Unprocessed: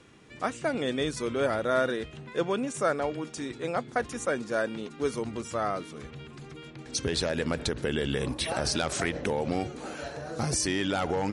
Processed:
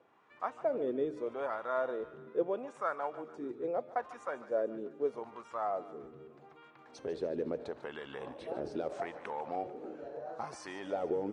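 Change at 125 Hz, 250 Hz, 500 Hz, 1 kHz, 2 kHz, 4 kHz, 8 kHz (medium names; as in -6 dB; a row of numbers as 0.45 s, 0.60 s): -19.5 dB, -10.5 dB, -5.0 dB, -5.5 dB, -13.5 dB, -22.5 dB, under -25 dB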